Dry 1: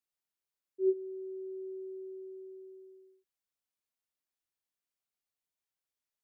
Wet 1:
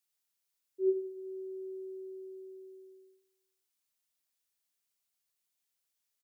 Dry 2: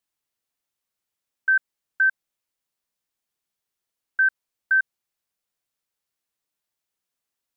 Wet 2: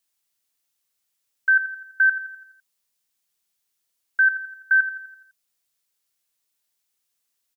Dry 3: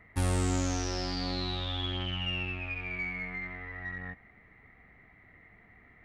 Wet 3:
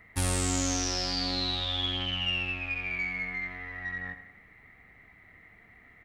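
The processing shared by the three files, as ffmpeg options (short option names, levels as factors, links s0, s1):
-filter_complex "[0:a]highshelf=f=2500:g=10.5,asplit=2[s0][s1];[s1]adelay=84,lowpass=f=4600:p=1,volume=0.266,asplit=2[s2][s3];[s3]adelay=84,lowpass=f=4600:p=1,volume=0.54,asplit=2[s4][s5];[s5]adelay=84,lowpass=f=4600:p=1,volume=0.54,asplit=2[s6][s7];[s7]adelay=84,lowpass=f=4600:p=1,volume=0.54,asplit=2[s8][s9];[s9]adelay=84,lowpass=f=4600:p=1,volume=0.54,asplit=2[s10][s11];[s11]adelay=84,lowpass=f=4600:p=1,volume=0.54[s12];[s2][s4][s6][s8][s10][s12]amix=inputs=6:normalize=0[s13];[s0][s13]amix=inputs=2:normalize=0,volume=0.891"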